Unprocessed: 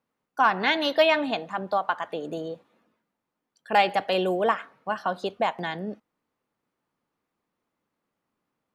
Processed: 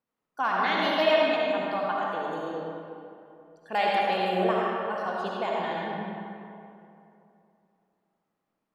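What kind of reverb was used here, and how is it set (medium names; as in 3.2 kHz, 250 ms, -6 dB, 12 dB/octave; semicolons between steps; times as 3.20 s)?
algorithmic reverb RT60 2.8 s, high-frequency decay 0.55×, pre-delay 30 ms, DRR -4.5 dB; trim -7.5 dB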